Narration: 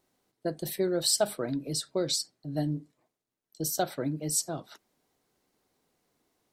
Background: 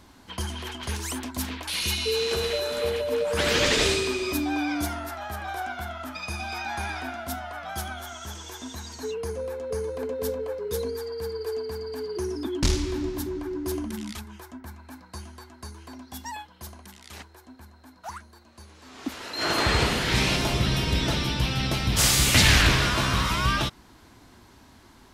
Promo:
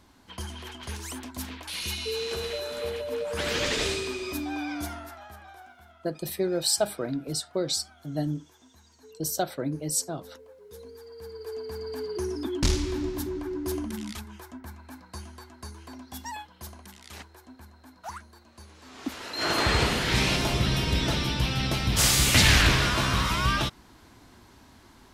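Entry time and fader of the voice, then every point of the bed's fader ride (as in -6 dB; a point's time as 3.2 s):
5.60 s, +1.0 dB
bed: 4.94 s -5.5 dB
5.78 s -19.5 dB
10.57 s -19.5 dB
11.88 s -1 dB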